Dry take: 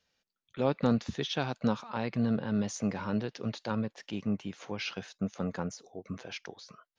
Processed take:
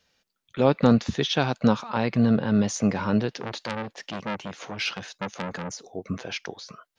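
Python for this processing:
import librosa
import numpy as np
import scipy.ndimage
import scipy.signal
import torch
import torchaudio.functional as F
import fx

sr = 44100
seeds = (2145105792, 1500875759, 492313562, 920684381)

y = fx.transformer_sat(x, sr, knee_hz=3000.0, at=(3.4, 5.88))
y = y * 10.0 ** (8.5 / 20.0)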